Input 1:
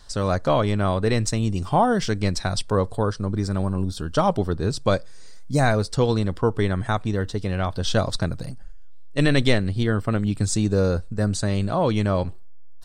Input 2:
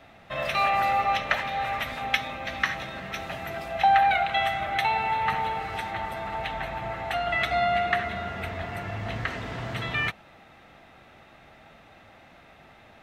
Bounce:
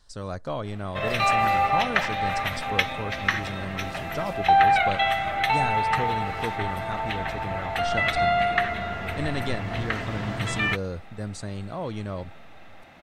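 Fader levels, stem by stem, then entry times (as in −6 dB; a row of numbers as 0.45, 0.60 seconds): −11.0, +2.0 decibels; 0.00, 0.65 seconds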